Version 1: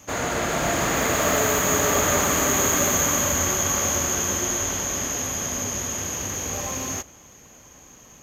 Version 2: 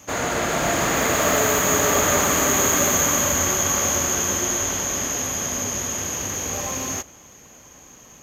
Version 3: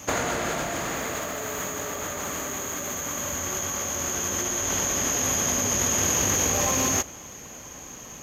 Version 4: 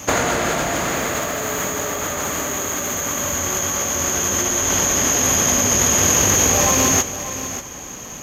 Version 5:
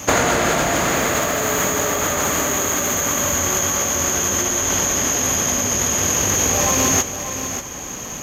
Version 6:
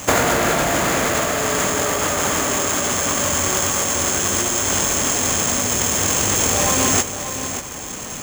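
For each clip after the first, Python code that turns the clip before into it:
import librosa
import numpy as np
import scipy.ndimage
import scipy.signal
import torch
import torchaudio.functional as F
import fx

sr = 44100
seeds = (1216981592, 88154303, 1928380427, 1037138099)

y1 = fx.low_shelf(x, sr, hz=120.0, db=-3.5)
y1 = y1 * librosa.db_to_amplitude(2.0)
y2 = fx.over_compress(y1, sr, threshold_db=-28.0, ratio=-1.0)
y3 = y2 + 10.0 ** (-12.0 / 20.0) * np.pad(y2, (int(585 * sr / 1000.0), 0))[:len(y2)]
y3 = y3 * librosa.db_to_amplitude(7.5)
y4 = fx.rider(y3, sr, range_db=4, speed_s=2.0)
y5 = fx.sample_hold(y4, sr, seeds[0], rate_hz=14000.0, jitter_pct=0)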